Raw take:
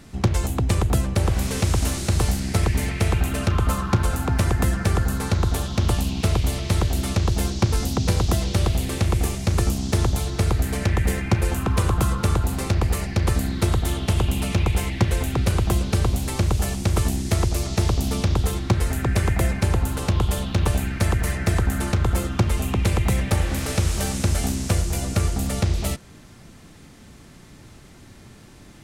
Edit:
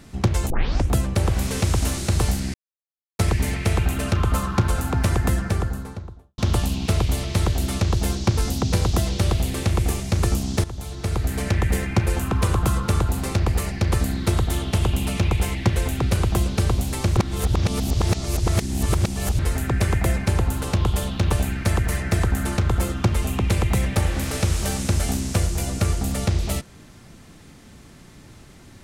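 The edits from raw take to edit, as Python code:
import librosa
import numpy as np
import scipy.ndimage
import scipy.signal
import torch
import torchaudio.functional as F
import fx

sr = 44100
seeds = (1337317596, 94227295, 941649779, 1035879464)

y = fx.studio_fade_out(x, sr, start_s=4.55, length_s=1.18)
y = fx.edit(y, sr, fx.tape_start(start_s=0.5, length_s=0.42),
    fx.insert_silence(at_s=2.54, length_s=0.65),
    fx.fade_in_from(start_s=9.99, length_s=0.78, floor_db=-16.0),
    fx.reverse_span(start_s=16.52, length_s=2.22), tone=tone)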